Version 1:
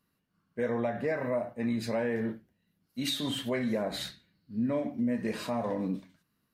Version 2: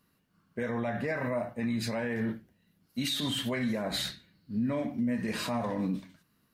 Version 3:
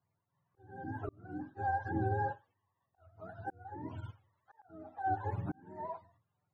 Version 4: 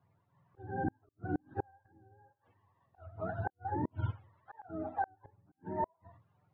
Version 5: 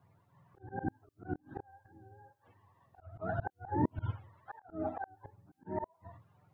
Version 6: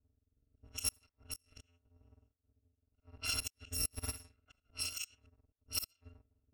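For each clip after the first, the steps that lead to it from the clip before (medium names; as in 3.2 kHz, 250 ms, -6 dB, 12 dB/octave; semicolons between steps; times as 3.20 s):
dynamic bell 460 Hz, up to -7 dB, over -43 dBFS, Q 0.77; peak limiter -29 dBFS, peak gain reduction 8.5 dB; trim +6 dB
spectrum inverted on a logarithmic axis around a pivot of 430 Hz; slow attack 570 ms; upward expansion 1.5:1, over -48 dBFS
inverted gate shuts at -33 dBFS, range -40 dB; distance through air 350 m; trim +11.5 dB
slow attack 160 ms; trim +5.5 dB
bit-reversed sample order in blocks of 256 samples; level-controlled noise filter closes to 390 Hz, open at -35 dBFS; rotary cabinet horn 0.85 Hz, later 5 Hz, at 3.88 s; trim +1.5 dB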